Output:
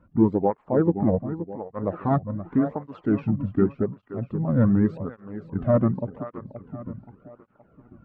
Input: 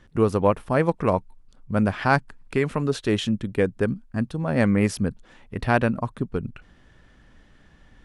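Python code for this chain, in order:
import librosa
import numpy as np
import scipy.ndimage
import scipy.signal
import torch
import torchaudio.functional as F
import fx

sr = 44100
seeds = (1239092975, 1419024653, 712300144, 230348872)

p1 = fx.spec_quant(x, sr, step_db=15)
p2 = scipy.signal.sosfilt(scipy.signal.butter(2, 1100.0, 'lowpass', fs=sr, output='sos'), p1)
p3 = fx.formant_shift(p2, sr, semitones=-4)
p4 = p3 + fx.echo_feedback(p3, sr, ms=524, feedback_pct=42, wet_db=-11.0, dry=0)
p5 = fx.flanger_cancel(p4, sr, hz=0.87, depth_ms=2.6)
y = F.gain(torch.from_numpy(p5), 3.5).numpy()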